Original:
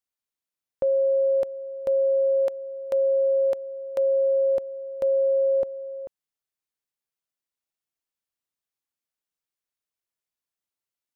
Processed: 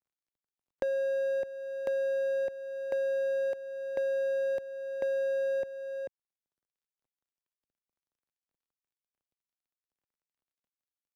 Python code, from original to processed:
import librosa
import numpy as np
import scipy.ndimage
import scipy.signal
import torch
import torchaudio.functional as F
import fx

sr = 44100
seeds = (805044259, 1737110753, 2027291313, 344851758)

y = scipy.ndimage.median_filter(x, 41, mode='constant')
y = fx.band_squash(y, sr, depth_pct=70)
y = y * 10.0 ** (-7.0 / 20.0)